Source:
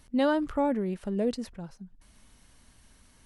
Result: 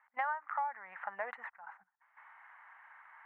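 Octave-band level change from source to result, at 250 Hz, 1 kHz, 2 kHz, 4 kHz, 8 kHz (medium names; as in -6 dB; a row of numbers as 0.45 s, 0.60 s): under -40 dB, -1.5 dB, -0.5 dB, under -20 dB, under -25 dB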